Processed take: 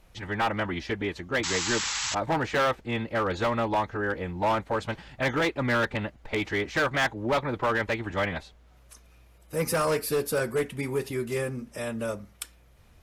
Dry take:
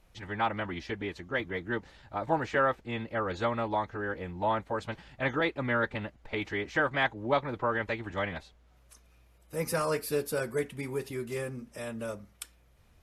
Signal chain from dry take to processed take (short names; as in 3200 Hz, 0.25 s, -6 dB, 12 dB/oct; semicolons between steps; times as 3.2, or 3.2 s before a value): hard clip -26 dBFS, distortion -11 dB; painted sound noise, 1.43–2.15, 780–7900 Hz -36 dBFS; gain +5.5 dB